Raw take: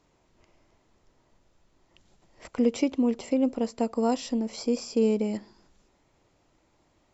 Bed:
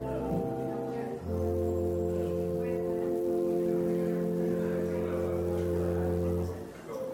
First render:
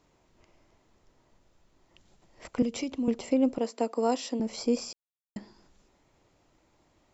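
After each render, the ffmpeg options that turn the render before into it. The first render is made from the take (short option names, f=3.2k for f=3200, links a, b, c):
-filter_complex "[0:a]asettb=1/sr,asplit=3[a][b][c];[a]atrim=end=2.624[d];[b]atrim=start=2.62:end=3.08,asetpts=PTS-STARTPTS,afade=t=in:d=0.004:c=qsin,afade=t=out:st=0.456:d=0.004:c=qsin,acrossover=split=190|3000[e][f][g];[f]acompressor=threshold=-33dB:ratio=5:attack=3.2:release=140:knee=2.83:detection=peak[h];[e][h][g]amix=inputs=3:normalize=0[i];[c]atrim=start=3.076[j];[d][i]acrossfade=d=0.004:c1=hsin:c2=qsin[k];[k][j]acrossfade=d=0.004:c1=qsin:c2=hsin,asettb=1/sr,asplit=3[l][m][n];[l]atrim=end=3.584[o];[m]atrim=start=3.58:end=4.4,asetpts=PTS-STARTPTS,afade=t=in:d=0.004:c=qsin,afade=t=out:st=0.816:d=0.004:c=qsin,highpass=f=260:w=0.5412,highpass=f=260:w=1.3066[p];[n]atrim=start=4.396[q];[o][p]acrossfade=d=0.004:c1=hsin:c2=qsin[r];[r][q]acrossfade=d=0.004:c1=qsin:c2=hsin,asplit=3[s][t][u];[s]atrim=end=4.93,asetpts=PTS-STARTPTS,afade=t=out:st=4.926:d=0.004:c=hsin[v];[t]atrim=start=4.93:end=5.36,asetpts=PTS-STARTPTS,volume=0[w];[u]atrim=start=5.36,asetpts=PTS-STARTPTS,afade=t=in:d=0.004:c=hsin[x];[v][w][x]concat=n=3:v=0:a=1"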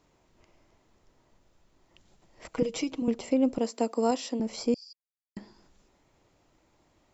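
-filter_complex "[0:a]asettb=1/sr,asplit=3[a][b][c];[a]atrim=end=2.504[d];[b]atrim=start=2.5:end=3.02,asetpts=PTS-STARTPTS,afade=t=in:d=0.004:c=qsin,afade=t=out:st=0.516:d=0.004:c=qsin,aecho=1:1:6.3:0.71,atrim=end_sample=22932[e];[c]atrim=start=3.016[f];[d][e]acrossfade=d=0.004:c1=hsin:c2=qsin[g];[g][f]acrossfade=d=0.004:c1=qsin:c2=hsin,asettb=1/sr,asplit=3[h][i][j];[h]atrim=end=3.534[k];[i]atrim=start=3.53:end=4.11,asetpts=PTS-STARTPTS,afade=t=in:d=0.004:c=qsin,afade=t=out:st=0.576:d=0.004:c=qsin,bass=f=250:g=5,treble=f=4k:g=5[l];[j]atrim=start=4.106[m];[k][l]acrossfade=d=0.004:c1=hsin:c2=qsin[n];[n][m]acrossfade=d=0.004:c1=qsin:c2=hsin,asettb=1/sr,asplit=3[o][p][q];[o]atrim=end=4.744[r];[p]atrim=start=4.74:end=5.37,asetpts=PTS-STARTPTS,afade=t=in:d=0.004:c=qsin,afade=t=out:st=0.626:d=0.004:c=qsin,bandpass=f=4.7k:t=q:w=19[s];[q]atrim=start=5.366[t];[r][s]acrossfade=d=0.004:c1=hsin:c2=qsin[u];[u][t]acrossfade=d=0.004:c1=qsin:c2=hsin"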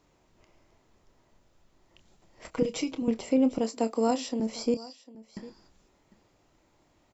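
-filter_complex "[0:a]asplit=2[a][b];[b]adelay=27,volume=-11dB[c];[a][c]amix=inputs=2:normalize=0,aecho=1:1:751:0.106"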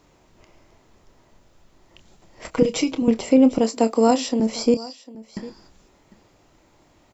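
-af "volume=9dB"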